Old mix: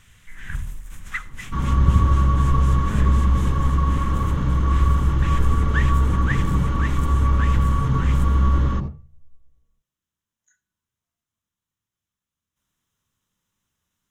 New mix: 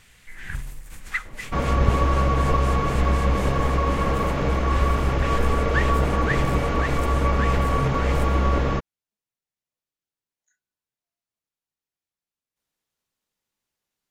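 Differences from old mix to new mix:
speech −7.5 dB
second sound +4.5 dB
reverb: off

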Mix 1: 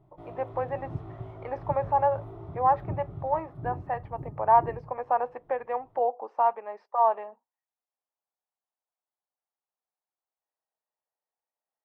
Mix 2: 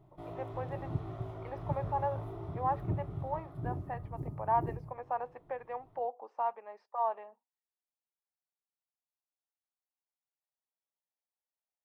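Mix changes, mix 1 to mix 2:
speech −10.0 dB
master: add high-shelf EQ 4,000 Hz +10.5 dB

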